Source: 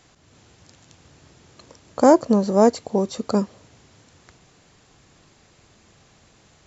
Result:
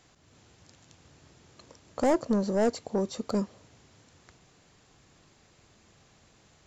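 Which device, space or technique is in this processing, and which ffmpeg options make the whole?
saturation between pre-emphasis and de-emphasis: -af "highshelf=f=2.7k:g=9,asoftclip=type=tanh:threshold=-12.5dB,highshelf=f=2.7k:g=-9,volume=-5.5dB"

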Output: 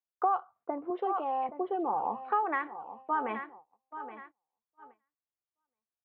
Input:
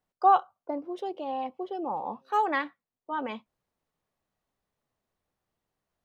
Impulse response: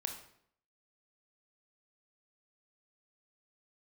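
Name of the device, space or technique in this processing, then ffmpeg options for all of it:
bass amplifier: -filter_complex "[0:a]asettb=1/sr,asplit=3[a][b][c];[a]atrim=end=0.904[d];[b]atrim=start=0.9:end=1.49,asetpts=PTS-STARTPTS,afade=t=in:d=0.004:c=qsin,afade=t=out:st=0.586:d=0.004:c=qsin,highpass=290[e];[c]atrim=start=1.486[f];[d][e]acrossfade=d=0.004:c1=hsin:c2=qsin[g];[g][f]acrossfade=d=0.004:c1=qsin:c2=hsin,aecho=1:1:822|1644|2466:0.158|0.0507|0.0162,agate=range=-26dB:threshold=-55dB:ratio=16:detection=peak,acompressor=threshold=-32dB:ratio=6,highpass=64,equalizer=f=90:t=q:w=4:g=-9,equalizer=f=180:t=q:w=4:g=-9,equalizer=f=270:t=q:w=4:g=-6,equalizer=f=590:t=q:w=4:g=-7,equalizer=f=1.2k:t=q:w=4:g=4,lowpass=f=2.2k:w=0.5412,lowpass=f=2.2k:w=1.3066,equalizer=f=680:w=7.4:g=4.5,volume=5.5dB"

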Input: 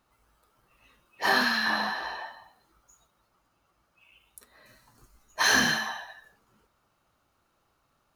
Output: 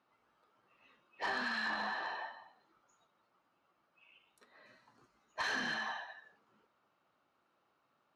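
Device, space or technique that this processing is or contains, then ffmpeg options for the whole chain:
AM radio: -af "highpass=200,lowpass=3.6k,acompressor=threshold=-28dB:ratio=5,asoftclip=type=tanh:threshold=-24.5dB,volume=-4dB"

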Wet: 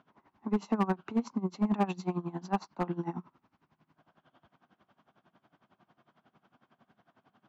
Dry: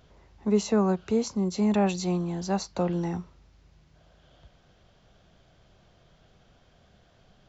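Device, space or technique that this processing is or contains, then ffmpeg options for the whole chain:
helicopter radio: -af "highpass=310,lowpass=2.9k,equalizer=f=125:t=o:w=1:g=5,equalizer=f=250:t=o:w=1:g=9,equalizer=f=500:t=o:w=1:g=-11,equalizer=f=1k:t=o:w=1:g=8,equalizer=f=2k:t=o:w=1:g=-3,equalizer=f=4k:t=o:w=1:g=-5,aeval=exprs='val(0)*pow(10,-20*(0.5-0.5*cos(2*PI*11*n/s))/20)':c=same,asoftclip=type=hard:threshold=-23.5dB,volume=2dB"

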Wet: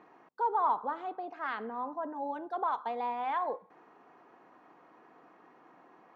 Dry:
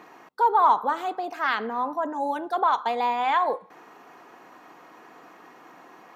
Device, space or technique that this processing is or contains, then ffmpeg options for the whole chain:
through cloth: -filter_complex "[0:a]lowpass=6.3k,highshelf=f=2.5k:g=-13,asettb=1/sr,asplit=3[a][b][c];[a]atrim=end=0.674[d];[b]atrim=start=0.67:end=2.34,asetpts=PTS-STARTPTS,afade=t=in:d=0.004:c=qsin,afade=t=out:st=1.666:d=0.004:c=qsin,lowpass=5.9k[e];[c]atrim=start=2.336[f];[d][e]acrossfade=d=0.004:c1=hsin:c2=qsin[g];[g][f]acrossfade=d=0.004:c1=qsin:c2=hsin,volume=-8dB"

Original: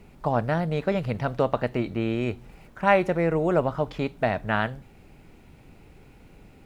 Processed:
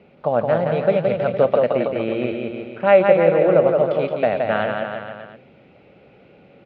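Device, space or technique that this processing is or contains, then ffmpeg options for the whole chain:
kitchen radio: -af "highpass=180,equalizer=f=290:t=q:w=4:g=-5,equalizer=f=550:t=q:w=4:g=9,equalizer=f=980:t=q:w=4:g=-7,equalizer=f=1.8k:t=q:w=4:g=-4,lowpass=f=3.5k:w=0.5412,lowpass=f=3.5k:w=1.3066,aecho=1:1:170|323|460.7|584.6|696.2:0.631|0.398|0.251|0.158|0.1,volume=3dB"

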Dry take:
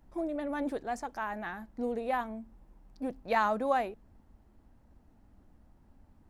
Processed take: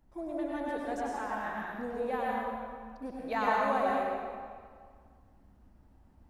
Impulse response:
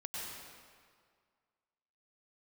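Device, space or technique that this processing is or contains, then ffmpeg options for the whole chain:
stairwell: -filter_complex "[1:a]atrim=start_sample=2205[a];[0:a][a]afir=irnorm=-1:irlink=0"

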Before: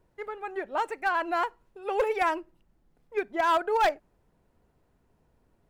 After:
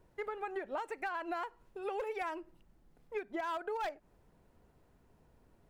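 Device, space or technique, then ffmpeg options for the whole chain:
serial compression, leveller first: -af "acompressor=threshold=-31dB:ratio=2,acompressor=threshold=-37dB:ratio=6,volume=1.5dB"

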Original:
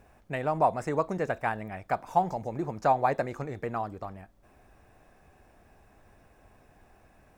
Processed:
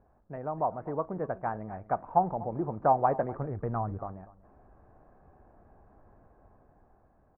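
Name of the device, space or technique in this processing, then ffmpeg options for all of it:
action camera in a waterproof case: -filter_complex "[0:a]asettb=1/sr,asplit=3[a][b][c];[a]atrim=end=3.224[d];[b]atrim=start=3.22:end=3.98,asetpts=PTS-STARTPTS,afade=t=in:d=0.004:c=qsin,afade=t=out:st=0.756:d=0.004:c=qsin,asubboost=boost=11.5:cutoff=190[e];[c]atrim=start=3.976[f];[d][e]acrossfade=d=0.004:c1=hsin:c2=qsin[g];[g][f]acrossfade=d=0.004:c1=qsin:c2=hsin,lowpass=f=1.3k:w=0.5412,lowpass=f=1.3k:w=1.3066,aecho=1:1:245:0.112,dynaudnorm=f=310:g=9:m=7dB,volume=-6dB" -ar 44100 -c:a aac -b:a 48k

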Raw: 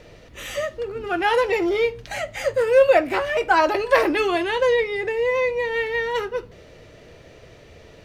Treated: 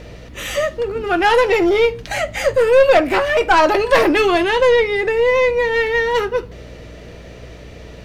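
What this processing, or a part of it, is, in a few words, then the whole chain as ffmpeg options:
valve amplifier with mains hum: -af "aeval=exprs='(tanh(5.01*val(0)+0.25)-tanh(0.25))/5.01':c=same,aeval=exprs='val(0)+0.00501*(sin(2*PI*60*n/s)+sin(2*PI*2*60*n/s)/2+sin(2*PI*3*60*n/s)/3+sin(2*PI*4*60*n/s)/4+sin(2*PI*5*60*n/s)/5)':c=same,volume=8dB"

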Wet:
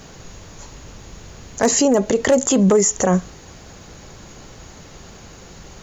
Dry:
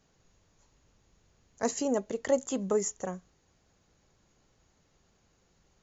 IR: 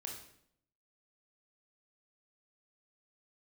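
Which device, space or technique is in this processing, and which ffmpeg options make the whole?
loud club master: -af "acompressor=threshold=-32dB:ratio=2,asoftclip=type=hard:threshold=-25dB,alimiter=level_in=35dB:limit=-1dB:release=50:level=0:latency=1,volume=-7dB"

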